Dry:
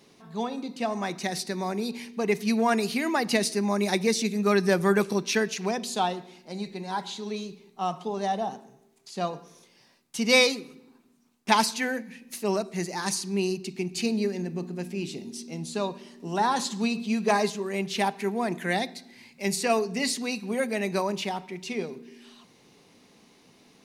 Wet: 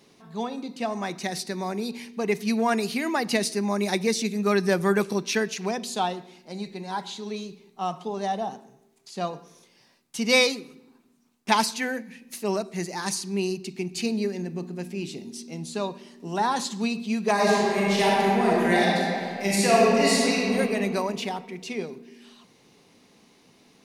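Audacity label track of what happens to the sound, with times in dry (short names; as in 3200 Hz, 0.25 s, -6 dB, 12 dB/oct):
17.330000	20.550000	reverb throw, RT60 2.4 s, DRR -6 dB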